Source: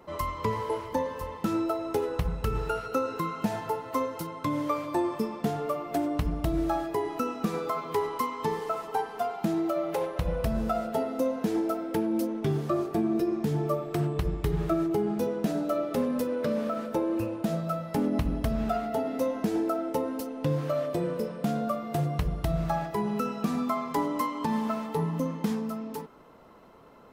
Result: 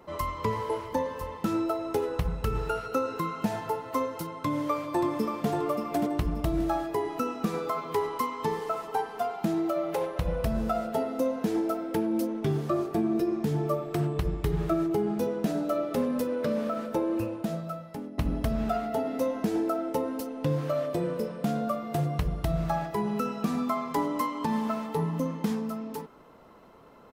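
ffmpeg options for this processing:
ffmpeg -i in.wav -filter_complex "[0:a]asplit=2[link_01][link_02];[link_02]afade=type=in:start_time=4.35:duration=0.01,afade=type=out:start_time=5.48:duration=0.01,aecho=0:1:580|1160|1740|2320:0.530884|0.18581|0.0650333|0.0227617[link_03];[link_01][link_03]amix=inputs=2:normalize=0,asplit=2[link_04][link_05];[link_04]atrim=end=18.18,asetpts=PTS-STARTPTS,afade=type=out:start_time=17.2:duration=0.98:silence=0.133352[link_06];[link_05]atrim=start=18.18,asetpts=PTS-STARTPTS,afade=type=in:duration=0.004:curve=hsin:silence=0.133352[link_07];[link_06][link_07]concat=n=2:v=0:a=1" out.wav

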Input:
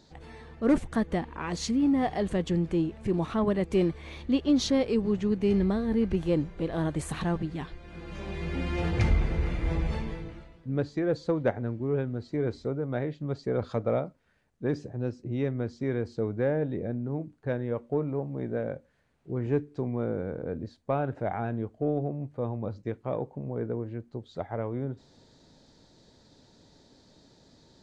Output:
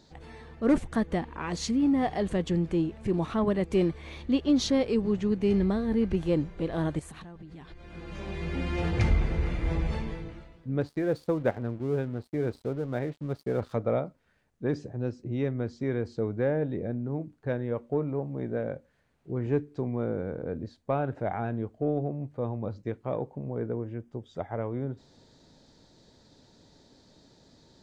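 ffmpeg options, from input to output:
ffmpeg -i in.wav -filter_complex "[0:a]asettb=1/sr,asplit=3[link_01][link_02][link_03];[link_01]atrim=end=6.994[link_04];[link_02]atrim=start=6.99:end=7.91,asetpts=PTS-STARTPTS,afade=type=in:duration=0.004:curve=qsin,afade=type=out:start_time=0.916:duration=0.004:curve=qsin,acompressor=threshold=-41dB:ratio=16:attack=3.2:release=140:knee=1:detection=peak[link_05];[link_03]atrim=start=7.906[link_06];[link_04][link_05]acrossfade=duration=0.004:curve1=hsin:curve2=qsin[link_07];[link_07][link_06]acrossfade=duration=0.004:curve1=qsin:curve2=hsin,asettb=1/sr,asplit=3[link_08][link_09][link_10];[link_08]atrim=end=10.814[link_11];[link_09]atrim=start=10.81:end=13.73,asetpts=PTS-STARTPTS,afade=type=in:duration=0.004:curve=qsin,afade=type=out:start_time=2.916:duration=0.004:curve=qsin,aeval=exprs='sgn(val(0))*max(abs(val(0))-0.00355,0)':channel_layout=same[link_12];[link_10]atrim=start=13.726[link_13];[link_11][link_12]acrossfade=duration=0.004:curve1=hsin:curve2=qsin[link_14];[link_14][link_13]acrossfade=duration=0.004:curve1=qsin:curve2=hsin,asettb=1/sr,asplit=3[link_15][link_16][link_17];[link_15]atrim=end=23.694[link_18];[link_16]atrim=start=23.69:end=24.69,asetpts=PTS-STARTPTS,afade=type=in:duration=0.004:curve=qsin,afade=type=out:start_time=0.996:duration=0.004:curve=qsin,asuperstop=centerf=4200:order=4:qfactor=4.8[link_19];[link_17]atrim=start=24.686[link_20];[link_18][link_19]acrossfade=duration=0.004:curve1=hsin:curve2=qsin[link_21];[link_21][link_20]acrossfade=duration=0.004:curve1=qsin:curve2=hsin" out.wav

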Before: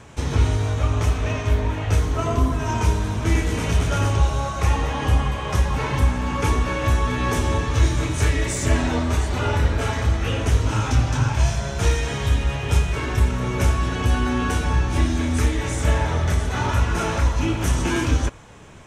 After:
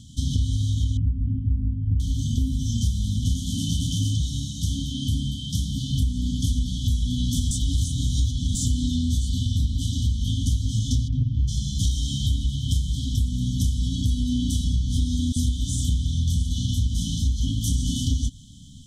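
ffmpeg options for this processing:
ffmpeg -i in.wav -filter_complex "[0:a]asettb=1/sr,asplit=3[link_01][link_02][link_03];[link_01]atrim=end=0.974[link_04];[link_02]atrim=start=0.97:end=2,asetpts=PTS-STARTPTS,afade=type=in:duration=0.004:curve=qsin,afade=type=out:start_time=1.026:duration=0.004:curve=qsin,lowpass=frequency=1200:width=0.5412,lowpass=frequency=1200:width=1.3066[link_05];[link_03]atrim=start=1.996[link_06];[link_04][link_05]acrossfade=duration=0.004:curve1=hsin:curve2=qsin[link_07];[link_07][link_06]acrossfade=duration=0.004:curve1=qsin:curve2=hsin,asettb=1/sr,asplit=3[link_08][link_09][link_10];[link_08]atrim=end=3.344[link_11];[link_09]atrim=start=3.34:end=5.9,asetpts=PTS-STARTPTS,afade=type=in:duration=0.004:curve=qsin,afade=type=out:start_time=2.556:duration=0.004:curve=qsin,highpass=100[link_12];[link_10]atrim=start=5.896[link_13];[link_11][link_12]acrossfade=duration=0.004:curve1=hsin:curve2=qsin[link_14];[link_14][link_13]acrossfade=duration=0.004:curve1=qsin:curve2=hsin,asplit=3[link_15][link_16][link_17];[link_15]afade=type=out:start_time=11.07:duration=0.02[link_18];[link_16]lowpass=1500,afade=type=in:start_time=11.07:duration=0.02,afade=type=out:start_time=11.47:duration=0.02[link_19];[link_17]afade=type=in:start_time=11.47:duration=0.02[link_20];[link_18][link_19][link_20]amix=inputs=3:normalize=0,asettb=1/sr,asplit=3[link_21][link_22][link_23];[link_21]atrim=end=15.324[link_24];[link_22]atrim=start=15.32:end=17.95,asetpts=PTS-STARTPTS,afade=type=in:duration=0.004:curve=qsin,afade=type=out:start_time=2.626:duration=0.004:curve=qsin,acrossover=split=1000[link_25][link_26];[link_25]adelay=40[link_27];[link_27][link_26]amix=inputs=2:normalize=0,atrim=end_sample=115983[link_28];[link_23]atrim=start=17.946[link_29];[link_24][link_28]acrossfade=duration=0.004:curve1=hsin:curve2=qsin[link_30];[link_30][link_29]acrossfade=duration=0.004:curve1=qsin:curve2=hsin,asplit=3[link_31][link_32][link_33];[link_31]atrim=end=7.512[link_34];[link_32]atrim=start=7.508:end=8.552,asetpts=PTS-STARTPTS,areverse[link_35];[link_33]atrim=start=8.548[link_36];[link_34][link_35]acrossfade=duration=0.004:curve1=hsin:curve2=hsin[link_37];[link_37][link_36]acrossfade=duration=0.004:curve1=hsin:curve2=hsin,afftfilt=real='re*(1-between(b*sr/4096,290,3000))':imag='im*(1-between(b*sr/4096,290,3000))':win_size=4096:overlap=0.75,equalizer=frequency=1500:width=0.92:gain=11,acompressor=threshold=-20dB:ratio=6,volume=1.5dB" out.wav

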